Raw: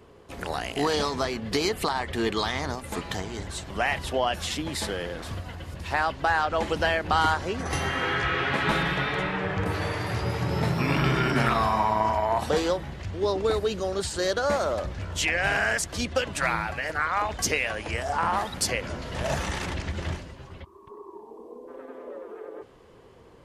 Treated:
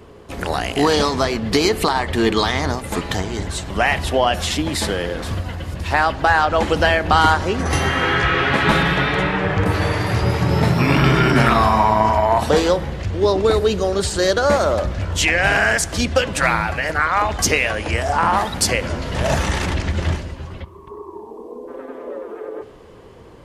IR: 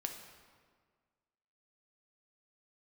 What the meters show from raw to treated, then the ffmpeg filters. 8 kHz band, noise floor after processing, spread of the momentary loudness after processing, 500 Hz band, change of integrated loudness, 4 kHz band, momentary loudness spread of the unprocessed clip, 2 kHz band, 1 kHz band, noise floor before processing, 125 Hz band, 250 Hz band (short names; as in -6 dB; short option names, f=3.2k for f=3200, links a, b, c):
+8.0 dB, -41 dBFS, 16 LU, +9.0 dB, +8.5 dB, +8.0 dB, 17 LU, +8.5 dB, +8.5 dB, -51 dBFS, +10.0 dB, +10.0 dB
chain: -filter_complex "[0:a]asplit=2[a][b];[1:a]atrim=start_sample=2205,lowshelf=f=450:g=9.5[c];[b][c]afir=irnorm=-1:irlink=0,volume=-11.5dB[d];[a][d]amix=inputs=2:normalize=0,volume=6.5dB"